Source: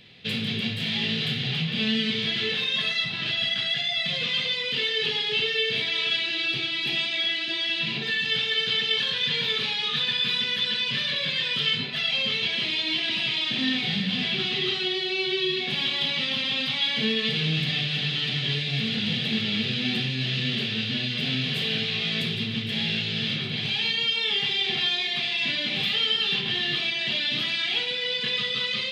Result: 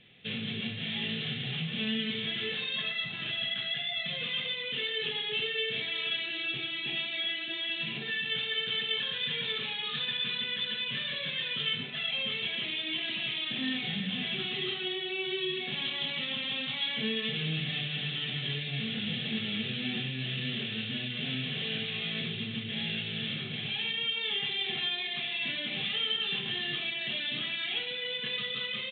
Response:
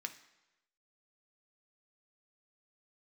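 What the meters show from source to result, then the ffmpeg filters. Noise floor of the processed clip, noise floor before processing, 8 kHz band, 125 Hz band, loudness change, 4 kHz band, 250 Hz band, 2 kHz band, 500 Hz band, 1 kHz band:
−37 dBFS, −30 dBFS, below −35 dB, −7.0 dB, −7.0 dB, −7.5 dB, −6.5 dB, −6.5 dB, −6.5 dB, −7.0 dB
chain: -af "equalizer=frequency=82:width_type=o:width=0.77:gain=-3.5,bandreject=frequency=960:width=16,aresample=8000,aresample=44100,volume=-6.5dB"

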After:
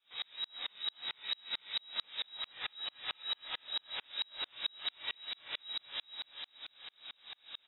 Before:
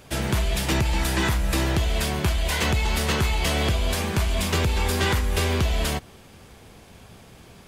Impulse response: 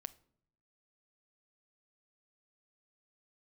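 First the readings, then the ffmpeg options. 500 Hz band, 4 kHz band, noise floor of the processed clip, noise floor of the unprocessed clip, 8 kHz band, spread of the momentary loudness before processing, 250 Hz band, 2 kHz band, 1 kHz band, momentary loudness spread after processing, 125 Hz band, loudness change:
−31.0 dB, −6.5 dB, −71 dBFS, −49 dBFS, below −40 dB, 2 LU, −39.0 dB, −17.5 dB, −21.5 dB, 10 LU, below −40 dB, −15.5 dB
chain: -filter_complex "[0:a]equalizer=frequency=1500:width=1.5:gain=3,acompressor=threshold=-31dB:ratio=6,asoftclip=type=tanh:threshold=-35.5dB,flanger=delay=16:depth=5.9:speed=0.68,aecho=1:1:427|854|1281|1708|2135:0.708|0.29|0.119|0.0488|0.02[link_01];[1:a]atrim=start_sample=2205[link_02];[link_01][link_02]afir=irnorm=-1:irlink=0,lowpass=frequency=3300:width_type=q:width=0.5098,lowpass=frequency=3300:width_type=q:width=0.6013,lowpass=frequency=3300:width_type=q:width=0.9,lowpass=frequency=3300:width_type=q:width=2.563,afreqshift=-3900,aeval=exprs='val(0)*pow(10,-39*if(lt(mod(-4.5*n/s,1),2*abs(-4.5)/1000),1-mod(-4.5*n/s,1)/(2*abs(-4.5)/1000),(mod(-4.5*n/s,1)-2*abs(-4.5)/1000)/(1-2*abs(-4.5)/1000))/20)':channel_layout=same,volume=11dB"

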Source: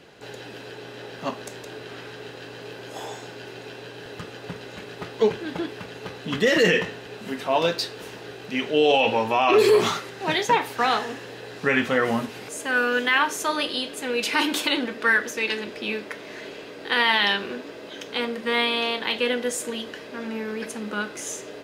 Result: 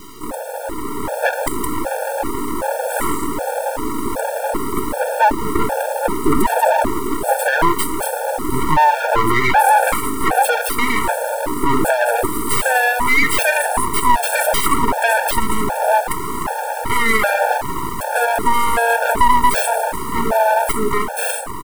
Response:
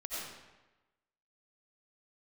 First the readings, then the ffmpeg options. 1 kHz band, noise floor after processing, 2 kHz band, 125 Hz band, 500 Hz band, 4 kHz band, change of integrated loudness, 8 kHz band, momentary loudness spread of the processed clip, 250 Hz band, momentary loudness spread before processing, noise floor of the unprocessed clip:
+12.0 dB, −25 dBFS, +5.5 dB, +8.5 dB, +5.0 dB, −2.5 dB, +5.5 dB, +11.5 dB, 9 LU, +6.0 dB, 20 LU, −41 dBFS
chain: -filter_complex "[0:a]aecho=1:1:1.9:0.86,afftfilt=real='re*(1-between(b*sr/4096,1400,8000))':imag='im*(1-between(b*sr/4096,1400,8000))':win_size=4096:overlap=0.75,acompressor=threshold=-25dB:ratio=3,acrusher=bits=9:mix=0:aa=0.000001,equalizer=frequency=710:width=0.54:gain=-14,dynaudnorm=framelen=180:gausssize=11:maxgain=5dB,asplit=2[link_01][link_02];[link_02]adelay=171,lowpass=frequency=1600:poles=1,volume=-18dB,asplit=2[link_03][link_04];[link_04]adelay=171,lowpass=frequency=1600:poles=1,volume=0.27[link_05];[link_01][link_03][link_05]amix=inputs=3:normalize=0,aeval=exprs='abs(val(0))':channel_layout=same,bass=frequency=250:gain=-9,treble=frequency=4000:gain=-4,alimiter=level_in=29.5dB:limit=-1dB:release=50:level=0:latency=1,afftfilt=real='re*gt(sin(2*PI*1.3*pts/sr)*(1-2*mod(floor(b*sr/1024/460),2)),0)':imag='im*gt(sin(2*PI*1.3*pts/sr)*(1-2*mod(floor(b*sr/1024/460),2)),0)':win_size=1024:overlap=0.75,volume=-1dB"

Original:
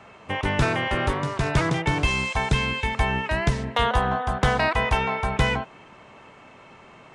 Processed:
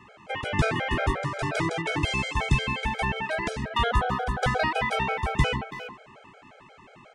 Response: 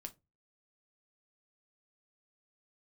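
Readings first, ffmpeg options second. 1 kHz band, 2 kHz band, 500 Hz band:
−3.0 dB, −3.0 dB, −3.0 dB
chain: -filter_complex "[0:a]asplit=2[link_01][link_02];[link_02]adelay=330,highpass=300,lowpass=3400,asoftclip=type=hard:threshold=-19.5dB,volume=-9dB[link_03];[link_01][link_03]amix=inputs=2:normalize=0,afftfilt=real='re*gt(sin(2*PI*5.6*pts/sr)*(1-2*mod(floor(b*sr/1024/420),2)),0)':imag='im*gt(sin(2*PI*5.6*pts/sr)*(1-2*mod(floor(b*sr/1024/420),2)),0)':win_size=1024:overlap=0.75"

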